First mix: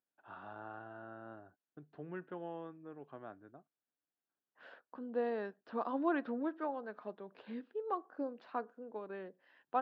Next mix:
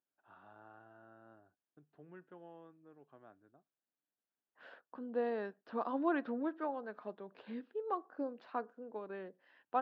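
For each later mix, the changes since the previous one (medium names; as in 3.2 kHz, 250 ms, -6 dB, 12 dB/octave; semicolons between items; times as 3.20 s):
first voice -10.0 dB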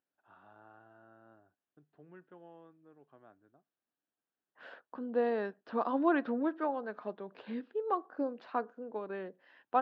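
second voice +5.0 dB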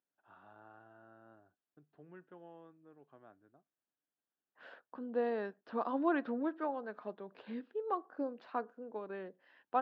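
second voice -3.5 dB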